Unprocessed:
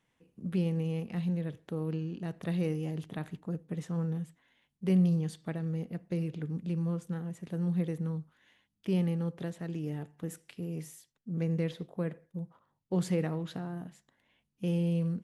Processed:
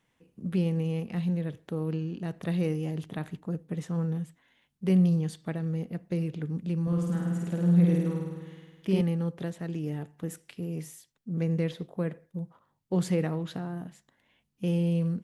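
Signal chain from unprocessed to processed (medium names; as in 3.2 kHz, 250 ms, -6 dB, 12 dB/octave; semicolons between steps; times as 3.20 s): 6.82–9.01 s: flutter echo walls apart 8.9 m, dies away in 1.4 s; trim +3 dB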